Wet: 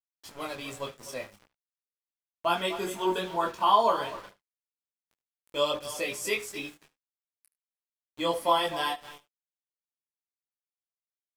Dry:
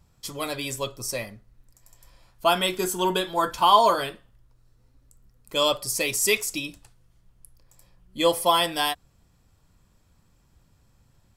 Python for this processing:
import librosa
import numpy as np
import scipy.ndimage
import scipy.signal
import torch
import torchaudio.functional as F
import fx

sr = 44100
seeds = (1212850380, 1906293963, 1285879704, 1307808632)

p1 = fx.highpass(x, sr, hz=140.0, slope=6)
p2 = fx.hum_notches(p1, sr, base_hz=60, count=9)
p3 = p2 + fx.echo_feedback(p2, sr, ms=251, feedback_pct=21, wet_db=-13.5, dry=0)
p4 = np.where(np.abs(p3) >= 10.0 ** (-34.5 / 20.0), p3, 0.0)
p5 = fx.high_shelf(p4, sr, hz=3900.0, db=-11.0)
p6 = p5 + 10.0 ** (-19.0 / 20.0) * np.pad(p5, (int(74 * sr / 1000.0), 0))[:len(p5)]
y = fx.detune_double(p6, sr, cents=12)